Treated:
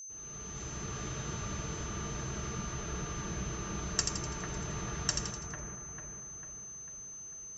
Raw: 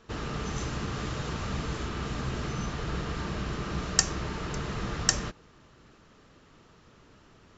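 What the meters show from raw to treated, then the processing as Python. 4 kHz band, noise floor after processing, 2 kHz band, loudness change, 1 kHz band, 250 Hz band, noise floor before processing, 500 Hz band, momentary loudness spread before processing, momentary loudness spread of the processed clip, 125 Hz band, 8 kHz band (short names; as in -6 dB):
-6.0 dB, -46 dBFS, -7.0 dB, -6.0 dB, -6.0 dB, -6.5 dB, -58 dBFS, -6.0 dB, 8 LU, 10 LU, -5.5 dB, n/a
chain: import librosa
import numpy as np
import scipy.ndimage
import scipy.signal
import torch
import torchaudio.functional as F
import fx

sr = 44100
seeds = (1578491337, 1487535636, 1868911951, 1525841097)

y = fx.fade_in_head(x, sr, length_s=0.91)
y = fx.notch_comb(y, sr, f0_hz=260.0)
y = fx.echo_split(y, sr, split_hz=2200.0, low_ms=447, high_ms=83, feedback_pct=52, wet_db=-5.0)
y = y + 10.0 ** (-37.0 / 20.0) * np.sin(2.0 * np.pi * 6200.0 * np.arange(len(y)) / sr)
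y = y * 10.0 ** (-6.5 / 20.0)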